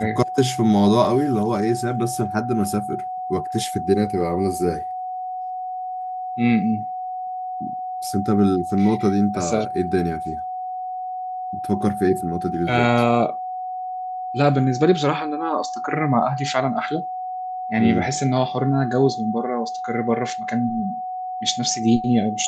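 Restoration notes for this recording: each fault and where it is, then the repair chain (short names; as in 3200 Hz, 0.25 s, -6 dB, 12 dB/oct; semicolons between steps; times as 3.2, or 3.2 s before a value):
tone 740 Hz -26 dBFS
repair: notch 740 Hz, Q 30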